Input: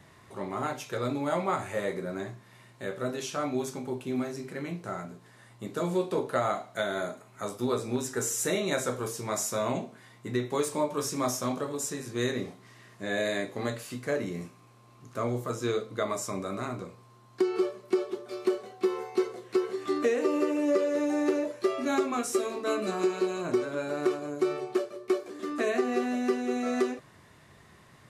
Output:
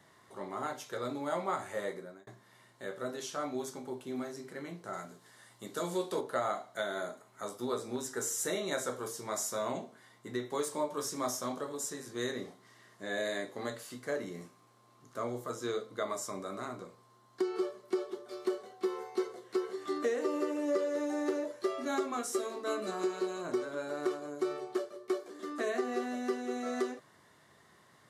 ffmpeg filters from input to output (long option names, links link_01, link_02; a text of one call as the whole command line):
ffmpeg -i in.wav -filter_complex "[0:a]asettb=1/sr,asplit=3[link_01][link_02][link_03];[link_01]atrim=end=4.934[link_04];[link_02]atrim=start=4.93:end=6.21,asetpts=PTS-STARTPTS,afade=type=in:duration=0.004:curve=qsin,afade=type=out:start_time=1.276:duration=0.004:curve=qsin,highshelf=frequency=2300:gain=7.5[link_05];[link_03]atrim=start=6.206[link_06];[link_04][link_05]acrossfade=duration=0.004:curve1=hsin:curve2=qsin[link_07];[link_07][link_06]acrossfade=duration=0.004:curve1=qsin:curve2=hsin,asplit=2[link_08][link_09];[link_08]atrim=end=2.27,asetpts=PTS-STARTPTS,afade=type=out:start_time=1.87:duration=0.4[link_10];[link_09]atrim=start=2.27,asetpts=PTS-STARTPTS,afade=type=in:duration=0.004:curve=hsin[link_11];[link_10][link_11]concat=n=2:v=0:a=1,highpass=frequency=300:poles=1,equalizer=frequency=2500:width=6:gain=-10,volume=-4dB" out.wav